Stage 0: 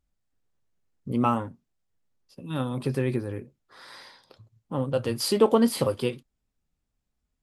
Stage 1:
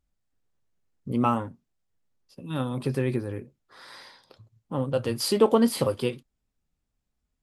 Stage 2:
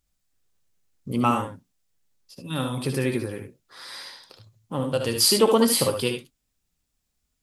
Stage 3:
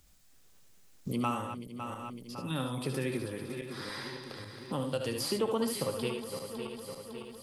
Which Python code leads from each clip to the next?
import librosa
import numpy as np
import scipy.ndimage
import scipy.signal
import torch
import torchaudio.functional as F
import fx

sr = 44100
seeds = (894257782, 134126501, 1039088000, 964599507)

y1 = x
y2 = fx.high_shelf(y1, sr, hz=2400.0, db=11.5)
y2 = fx.room_early_taps(y2, sr, ms=(63, 74), db=(-11.0, -7.0))
y3 = fx.reverse_delay_fb(y2, sr, ms=278, feedback_pct=57, wet_db=-12.5)
y3 = fx.band_squash(y3, sr, depth_pct=70)
y3 = y3 * librosa.db_to_amplitude(-8.5)